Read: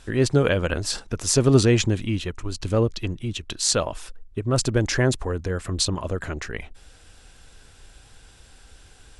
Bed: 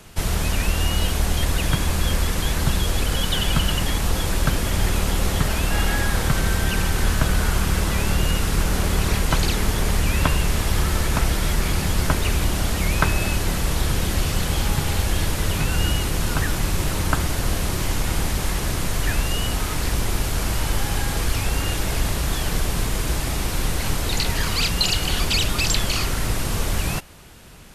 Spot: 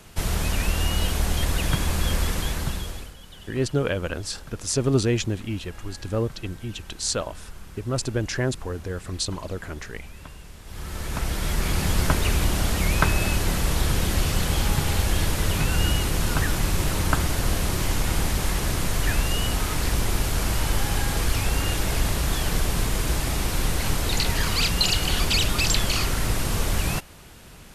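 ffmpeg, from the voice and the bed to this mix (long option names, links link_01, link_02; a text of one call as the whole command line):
ffmpeg -i stem1.wav -i stem2.wav -filter_complex "[0:a]adelay=3400,volume=-4.5dB[link_01];[1:a]volume=19.5dB,afade=type=out:start_time=2.29:duration=0.85:silence=0.0944061,afade=type=in:start_time=10.64:duration=1.26:silence=0.0794328[link_02];[link_01][link_02]amix=inputs=2:normalize=0" out.wav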